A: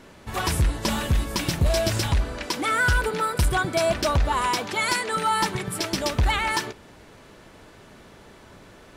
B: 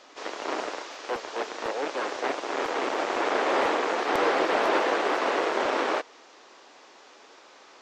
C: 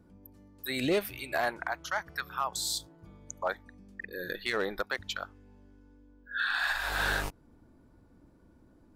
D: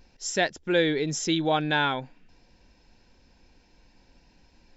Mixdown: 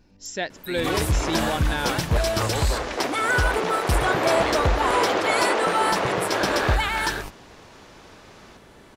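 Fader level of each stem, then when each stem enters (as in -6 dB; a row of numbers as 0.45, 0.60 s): -1.0, +1.0, -1.0, -4.0 dB; 0.50, 0.75, 0.00, 0.00 s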